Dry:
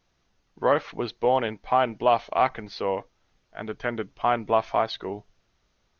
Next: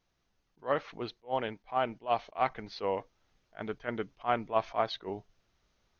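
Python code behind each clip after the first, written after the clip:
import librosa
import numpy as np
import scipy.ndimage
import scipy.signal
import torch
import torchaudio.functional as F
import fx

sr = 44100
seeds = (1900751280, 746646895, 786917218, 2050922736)

y = fx.rider(x, sr, range_db=10, speed_s=2.0)
y = fx.attack_slew(y, sr, db_per_s=320.0)
y = F.gain(torch.from_numpy(y), -6.5).numpy()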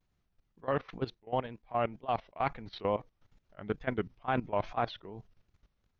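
y = fx.bass_treble(x, sr, bass_db=9, treble_db=-5)
y = fx.level_steps(y, sr, step_db=16)
y = fx.wow_flutter(y, sr, seeds[0], rate_hz=2.1, depth_cents=150.0)
y = F.gain(torch.from_numpy(y), 3.5).numpy()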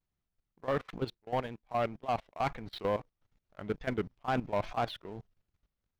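y = fx.leveller(x, sr, passes=2)
y = F.gain(torch.from_numpy(y), -5.5).numpy()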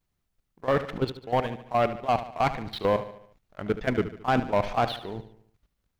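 y = fx.echo_feedback(x, sr, ms=73, feedback_pct=50, wet_db=-13.0)
y = F.gain(torch.from_numpy(y), 7.5).numpy()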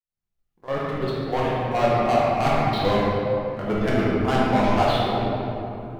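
y = fx.fade_in_head(x, sr, length_s=1.79)
y = 10.0 ** (-21.5 / 20.0) * np.tanh(y / 10.0 ** (-21.5 / 20.0))
y = fx.room_shoebox(y, sr, seeds[1], volume_m3=140.0, walls='hard', distance_m=0.9)
y = F.gain(torch.from_numpy(y), 1.5).numpy()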